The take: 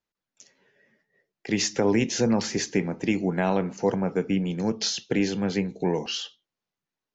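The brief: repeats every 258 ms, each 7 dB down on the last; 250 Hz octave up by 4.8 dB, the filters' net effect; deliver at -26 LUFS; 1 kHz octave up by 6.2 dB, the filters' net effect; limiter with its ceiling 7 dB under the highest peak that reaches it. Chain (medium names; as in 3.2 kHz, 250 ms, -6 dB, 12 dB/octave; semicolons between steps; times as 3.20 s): peaking EQ 250 Hz +6 dB; peaking EQ 1 kHz +7.5 dB; peak limiter -14 dBFS; feedback delay 258 ms, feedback 45%, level -7 dB; trim -2 dB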